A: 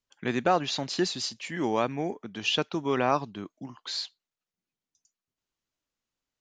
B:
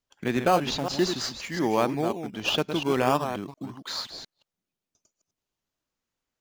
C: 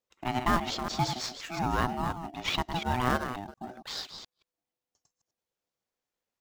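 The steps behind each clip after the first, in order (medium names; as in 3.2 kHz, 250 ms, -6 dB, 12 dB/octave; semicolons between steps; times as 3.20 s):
chunks repeated in reverse 177 ms, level -8 dB; in parallel at -8.5 dB: decimation with a swept rate 16×, swing 100% 0.44 Hz
ring modulator 500 Hz; trim -1.5 dB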